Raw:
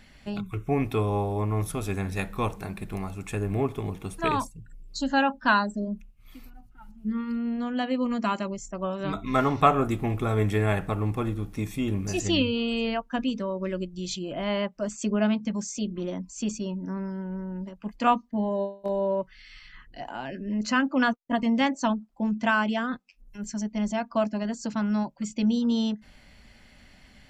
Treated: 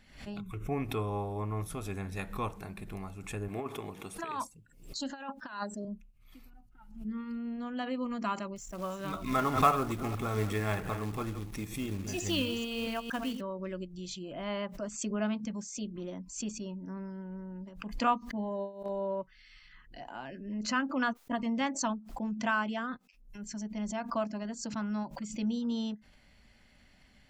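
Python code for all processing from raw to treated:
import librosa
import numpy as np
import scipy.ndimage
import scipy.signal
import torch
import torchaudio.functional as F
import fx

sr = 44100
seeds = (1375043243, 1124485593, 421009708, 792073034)

y = fx.chain(x, sr, fx.highpass(hz=370.0, slope=6),
    fx.over_compress(threshold_db=-29.0, ratio=-0.5), at=(3.48, 5.85))
y = fx.chain(y, sr, fx.reverse_delay(ms=227, wet_db=-10.5),
    fx.high_shelf(hz=2200.0, db=3.5),
    fx.quant_float(bits=2), at=(8.56, 13.41))
y = fx.dynamic_eq(y, sr, hz=1200.0, q=1.9, threshold_db=-40.0, ratio=4.0, max_db=4)
y = fx.pre_swell(y, sr, db_per_s=100.0)
y = y * librosa.db_to_amplitude(-8.5)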